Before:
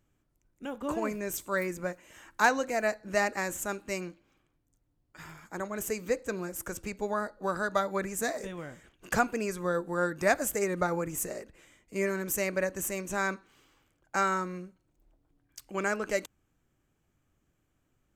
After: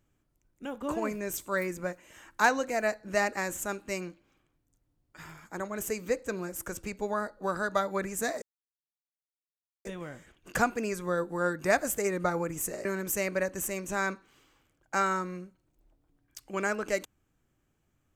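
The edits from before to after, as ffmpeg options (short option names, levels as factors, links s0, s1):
-filter_complex "[0:a]asplit=3[s0][s1][s2];[s0]atrim=end=8.42,asetpts=PTS-STARTPTS,afade=t=out:st=8.416:d=0.004:c=hsin,apad=pad_dur=1.43[s3];[s1]atrim=start=8.42:end=11.422,asetpts=PTS-STARTPTS,afade=t=in:d=0.004:c=hsin[s4];[s2]atrim=start=12.058[s5];[s3][s4]concat=n=2:v=0:a=1[s6];[s6][s5]acrossfade=d=0.004:c1=hsin:c2=hsin"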